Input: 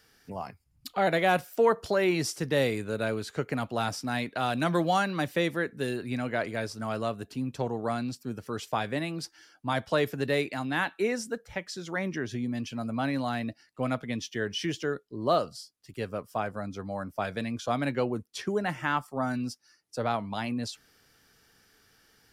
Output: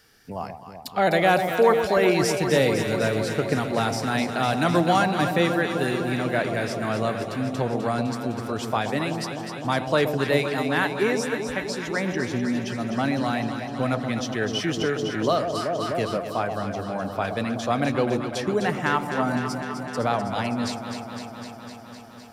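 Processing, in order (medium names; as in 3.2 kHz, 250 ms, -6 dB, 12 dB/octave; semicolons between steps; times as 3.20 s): on a send: echo whose repeats swap between lows and highs 127 ms, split 860 Hz, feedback 87%, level -6.5 dB; 14.81–16.17 s: on the sum: three bands compressed up and down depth 70%; trim +4.5 dB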